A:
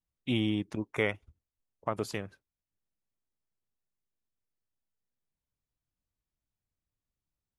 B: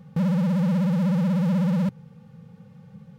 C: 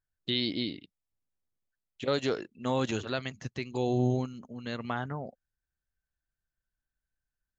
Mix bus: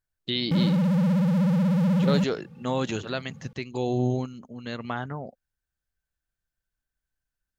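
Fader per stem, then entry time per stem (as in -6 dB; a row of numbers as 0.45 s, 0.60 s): mute, 0.0 dB, +2.0 dB; mute, 0.35 s, 0.00 s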